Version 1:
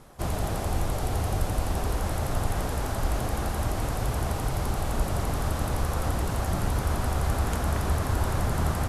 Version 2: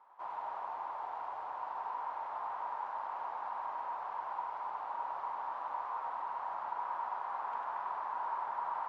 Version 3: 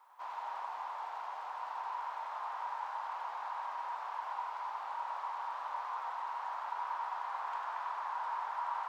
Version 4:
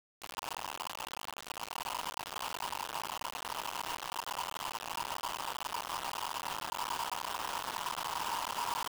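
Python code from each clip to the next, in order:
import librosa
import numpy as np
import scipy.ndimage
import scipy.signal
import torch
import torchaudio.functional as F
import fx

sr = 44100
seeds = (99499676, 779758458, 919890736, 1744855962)

y1 = fx.ladder_bandpass(x, sr, hz=1000.0, resonance_pct=80)
y1 = fx.air_absorb(y1, sr, metres=80.0)
y1 = y1 + 10.0 ** (-4.5 / 20.0) * np.pad(y1, (int(98 * sr / 1000.0), 0))[:len(y1)]
y2 = fx.highpass(y1, sr, hz=1200.0, slope=6)
y2 = fx.high_shelf(y2, sr, hz=3700.0, db=12.0)
y2 = fx.doubler(y2, sr, ms=25.0, db=-11)
y2 = F.gain(torch.from_numpy(y2), 2.5).numpy()
y3 = fx.quant_dither(y2, sr, seeds[0], bits=6, dither='none')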